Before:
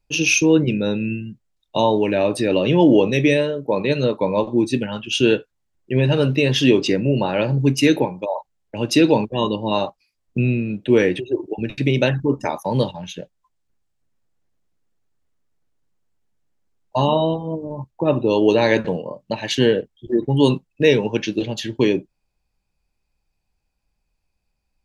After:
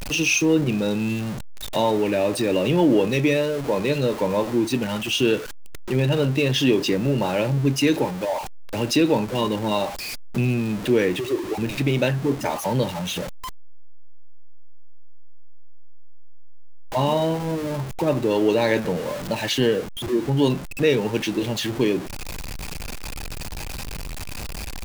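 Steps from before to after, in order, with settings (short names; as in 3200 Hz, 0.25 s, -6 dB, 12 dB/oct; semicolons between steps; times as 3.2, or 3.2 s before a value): zero-crossing step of -24.5 dBFS; in parallel at +0.5 dB: compressor, threshold -26 dBFS, peak gain reduction 16 dB; on the sum: gain -6.5 dB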